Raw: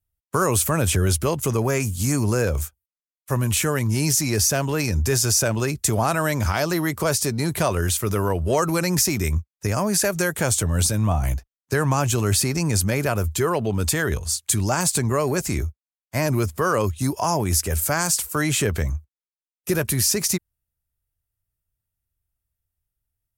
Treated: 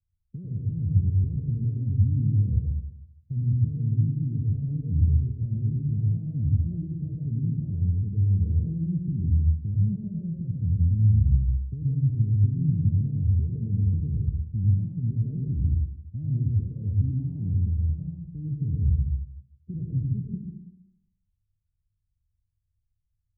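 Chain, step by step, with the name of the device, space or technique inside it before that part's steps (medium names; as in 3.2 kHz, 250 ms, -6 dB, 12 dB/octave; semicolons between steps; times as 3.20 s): club heard from the street (peak limiter -17.5 dBFS, peak gain reduction 10.5 dB; low-pass 190 Hz 24 dB/octave; reverberation RT60 0.80 s, pre-delay 90 ms, DRR -1.5 dB)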